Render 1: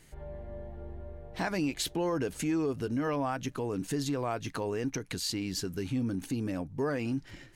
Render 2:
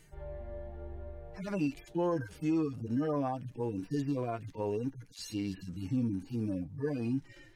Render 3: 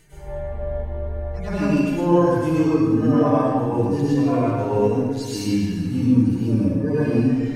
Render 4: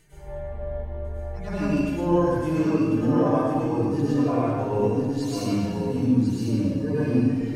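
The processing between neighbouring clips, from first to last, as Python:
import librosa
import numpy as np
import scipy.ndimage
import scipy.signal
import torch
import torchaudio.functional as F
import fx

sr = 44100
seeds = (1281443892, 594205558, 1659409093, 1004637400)

y1 = fx.hpss_only(x, sr, part='harmonic')
y2 = fx.rev_plate(y1, sr, seeds[0], rt60_s=1.7, hf_ratio=0.55, predelay_ms=85, drr_db=-9.5)
y2 = y2 * 10.0 ** (5.0 / 20.0)
y3 = y2 + 10.0 ** (-6.5 / 20.0) * np.pad(y2, (int(1047 * sr / 1000.0), 0))[:len(y2)]
y3 = y3 * 10.0 ** (-4.5 / 20.0)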